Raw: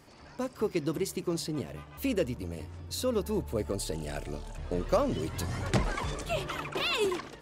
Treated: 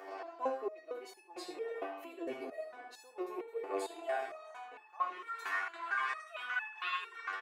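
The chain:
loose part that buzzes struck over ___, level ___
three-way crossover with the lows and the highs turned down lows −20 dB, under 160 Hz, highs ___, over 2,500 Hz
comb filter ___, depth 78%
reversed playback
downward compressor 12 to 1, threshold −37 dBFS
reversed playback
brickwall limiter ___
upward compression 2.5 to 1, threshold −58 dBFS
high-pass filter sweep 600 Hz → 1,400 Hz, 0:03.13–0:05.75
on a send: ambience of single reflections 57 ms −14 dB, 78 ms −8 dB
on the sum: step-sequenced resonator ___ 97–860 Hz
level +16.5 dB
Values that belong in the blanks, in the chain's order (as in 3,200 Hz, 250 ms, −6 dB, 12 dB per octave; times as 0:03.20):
−31 dBFS, −34 dBFS, −19 dB, 2.7 ms, −32 dBFS, 4.4 Hz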